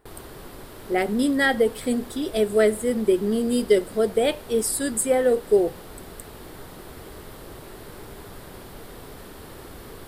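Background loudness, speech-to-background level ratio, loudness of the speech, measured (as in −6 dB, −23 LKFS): −42.0 LKFS, 19.5 dB, −22.5 LKFS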